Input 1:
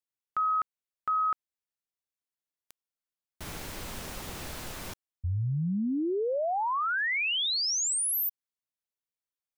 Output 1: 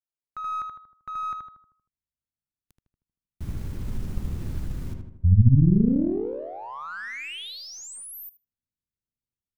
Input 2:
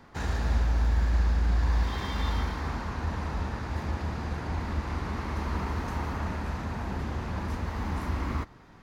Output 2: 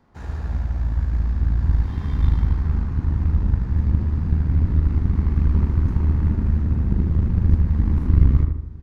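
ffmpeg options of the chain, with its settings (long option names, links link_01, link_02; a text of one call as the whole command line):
ffmpeg -i in.wav -filter_complex "[0:a]asplit=2[link_01][link_02];[link_02]adelay=78,lowpass=frequency=2100:poles=1,volume=-3dB,asplit=2[link_03][link_04];[link_04]adelay=78,lowpass=frequency=2100:poles=1,volume=0.54,asplit=2[link_05][link_06];[link_06]adelay=78,lowpass=frequency=2100:poles=1,volume=0.54,asplit=2[link_07][link_08];[link_08]adelay=78,lowpass=frequency=2100:poles=1,volume=0.54,asplit=2[link_09][link_10];[link_10]adelay=78,lowpass=frequency=2100:poles=1,volume=0.54,asplit=2[link_11][link_12];[link_12]adelay=78,lowpass=frequency=2100:poles=1,volume=0.54,asplit=2[link_13][link_14];[link_14]adelay=78,lowpass=frequency=2100:poles=1,volume=0.54[link_15];[link_01][link_03][link_05][link_07][link_09][link_11][link_13][link_15]amix=inputs=8:normalize=0,asubboost=boost=10:cutoff=220,aeval=exprs='1.06*(cos(1*acos(clip(val(0)/1.06,-1,1)))-cos(1*PI/2))+0.473*(cos(2*acos(clip(val(0)/1.06,-1,1)))-cos(2*PI/2))':channel_layout=same,asplit=2[link_16][link_17];[link_17]adynamicsmooth=sensitivity=4:basefreq=1200,volume=-1.5dB[link_18];[link_16][link_18]amix=inputs=2:normalize=0,volume=-11dB" out.wav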